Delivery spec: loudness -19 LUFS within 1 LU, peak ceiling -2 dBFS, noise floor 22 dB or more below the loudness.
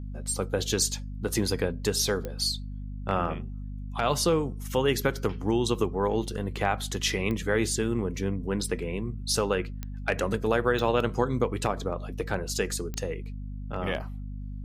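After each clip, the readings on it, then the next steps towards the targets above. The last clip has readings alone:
clicks 5; hum 50 Hz; harmonics up to 250 Hz; hum level -34 dBFS; loudness -28.5 LUFS; peak -10.0 dBFS; loudness target -19.0 LUFS
-> de-click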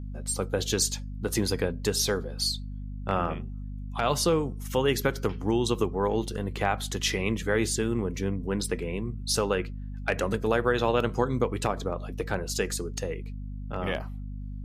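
clicks 0; hum 50 Hz; harmonics up to 250 Hz; hum level -34 dBFS
-> notches 50/100/150/200/250 Hz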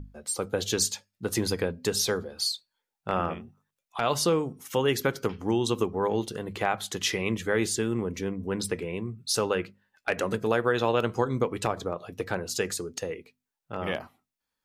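hum none; loudness -29.0 LUFS; peak -10.5 dBFS; loudness target -19.0 LUFS
-> gain +10 dB; limiter -2 dBFS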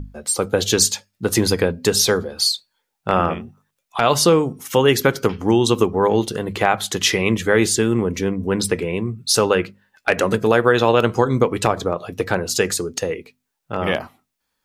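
loudness -19.0 LUFS; peak -2.0 dBFS; noise floor -77 dBFS

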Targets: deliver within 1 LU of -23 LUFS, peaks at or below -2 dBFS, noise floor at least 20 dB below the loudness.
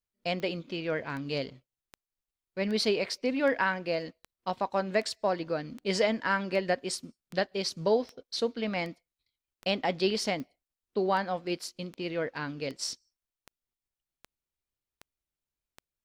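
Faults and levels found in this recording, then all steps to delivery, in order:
clicks 21; loudness -31.0 LUFS; peak -15.0 dBFS; loudness target -23.0 LUFS
-> de-click; gain +8 dB

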